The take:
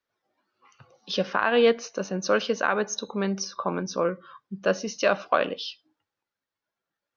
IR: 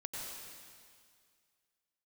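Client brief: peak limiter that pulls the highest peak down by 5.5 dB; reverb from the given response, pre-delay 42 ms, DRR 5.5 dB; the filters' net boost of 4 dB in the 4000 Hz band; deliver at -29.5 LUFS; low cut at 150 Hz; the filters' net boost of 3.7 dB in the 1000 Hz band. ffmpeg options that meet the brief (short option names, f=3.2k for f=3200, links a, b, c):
-filter_complex "[0:a]highpass=150,equalizer=f=1k:t=o:g=4.5,equalizer=f=4k:t=o:g=5,alimiter=limit=-11dB:level=0:latency=1,asplit=2[a][b];[1:a]atrim=start_sample=2205,adelay=42[c];[b][c]afir=irnorm=-1:irlink=0,volume=-5.5dB[d];[a][d]amix=inputs=2:normalize=0,volume=-4.5dB"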